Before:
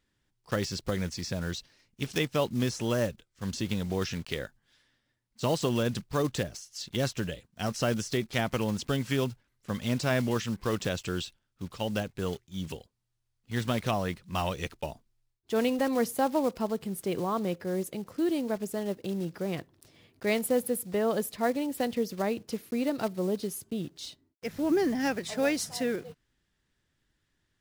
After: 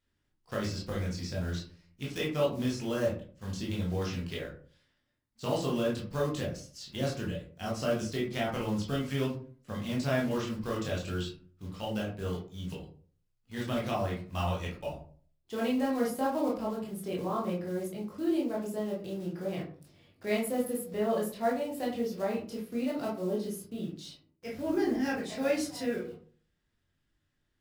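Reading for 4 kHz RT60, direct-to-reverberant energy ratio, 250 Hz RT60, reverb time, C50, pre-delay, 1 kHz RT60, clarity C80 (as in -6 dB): 0.25 s, -4.5 dB, 0.55 s, 0.45 s, 5.5 dB, 16 ms, 0.40 s, 11.5 dB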